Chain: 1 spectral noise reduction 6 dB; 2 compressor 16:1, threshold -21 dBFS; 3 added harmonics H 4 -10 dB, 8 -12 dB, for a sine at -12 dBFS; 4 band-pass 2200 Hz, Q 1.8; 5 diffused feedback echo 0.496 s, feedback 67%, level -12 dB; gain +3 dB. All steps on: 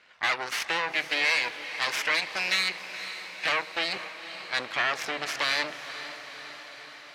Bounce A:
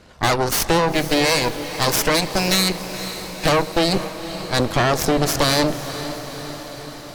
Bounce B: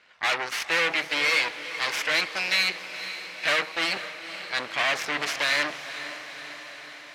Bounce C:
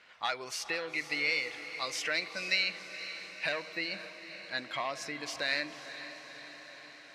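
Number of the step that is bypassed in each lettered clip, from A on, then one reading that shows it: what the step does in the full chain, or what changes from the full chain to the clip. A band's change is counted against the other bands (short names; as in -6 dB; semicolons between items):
4, 125 Hz band +15.5 dB; 2, mean gain reduction 2.5 dB; 3, momentary loudness spread change +2 LU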